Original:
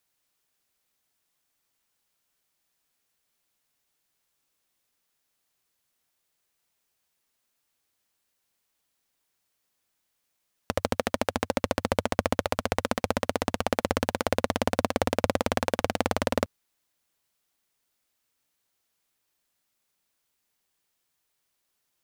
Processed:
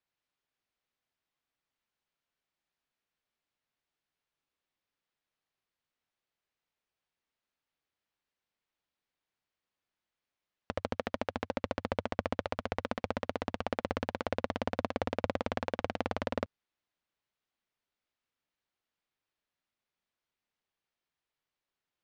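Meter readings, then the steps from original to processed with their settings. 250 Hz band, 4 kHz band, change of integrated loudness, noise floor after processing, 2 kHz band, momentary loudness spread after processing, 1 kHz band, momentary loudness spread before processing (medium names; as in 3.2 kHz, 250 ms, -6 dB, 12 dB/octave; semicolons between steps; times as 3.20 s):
-7.5 dB, -10.5 dB, -8.0 dB, under -85 dBFS, -8.0 dB, 3 LU, -7.5 dB, 2 LU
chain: low-pass 3.7 kHz 12 dB/octave; trim -7.5 dB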